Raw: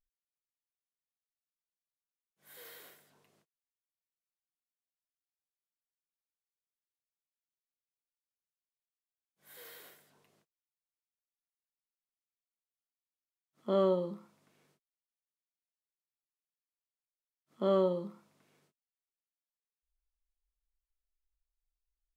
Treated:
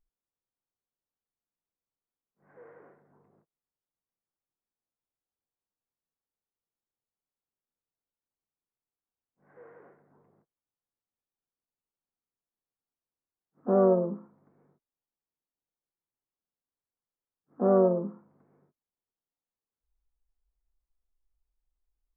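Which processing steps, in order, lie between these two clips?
pitch-shifted copies added +4 semitones −11 dB
Gaussian smoothing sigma 7.2 samples
notch filter 620 Hz, Q 12
level +7.5 dB

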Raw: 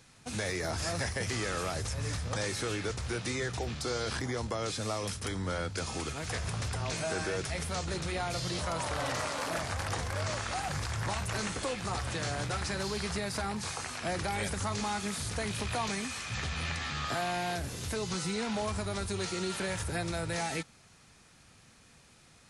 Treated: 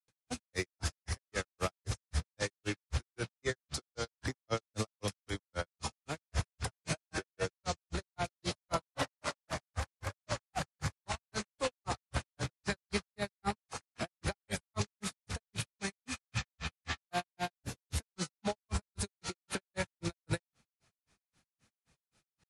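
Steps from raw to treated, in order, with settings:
brickwall limiter −29.5 dBFS, peak gain reduction 7 dB
granular cloud 137 ms, grains 3.8 per second, pitch spread up and down by 0 semitones
expander for the loud parts 2.5 to 1, over −50 dBFS
level +9.5 dB

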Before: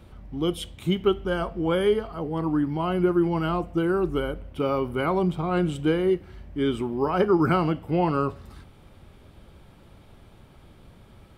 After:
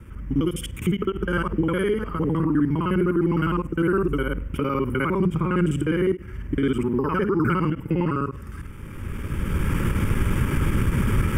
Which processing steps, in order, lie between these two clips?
reversed piece by piece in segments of 51 ms
camcorder AGC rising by 17 dB per second
brickwall limiter −17 dBFS, peak gain reduction 7 dB
phaser with its sweep stopped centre 1,700 Hz, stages 4
every ending faded ahead of time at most 320 dB per second
level +6.5 dB

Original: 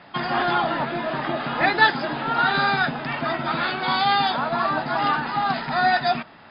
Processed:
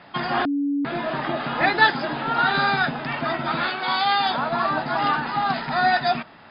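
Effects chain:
0:00.45–0:00.85: beep over 284 Hz −20 dBFS
0:03.69–0:04.26: low-shelf EQ 250 Hz −11.5 dB

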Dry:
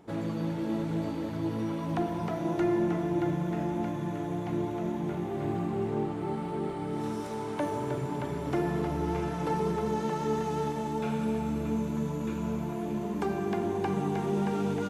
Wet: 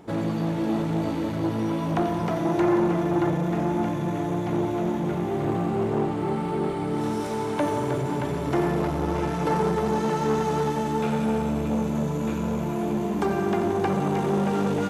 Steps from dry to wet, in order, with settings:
feedback echo with a high-pass in the loop 89 ms, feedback 75%, high-pass 1,100 Hz, level −9.5 dB
saturating transformer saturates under 530 Hz
level +7.5 dB

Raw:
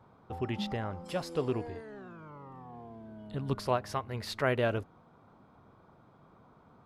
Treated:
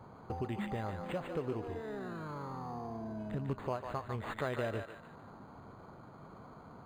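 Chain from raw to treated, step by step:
downward compressor 3 to 1, threshold −45 dBFS, peak gain reduction 16 dB
feedback echo with a band-pass in the loop 148 ms, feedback 46%, band-pass 1,600 Hz, level −3.5 dB
linearly interpolated sample-rate reduction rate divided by 8×
level +7 dB

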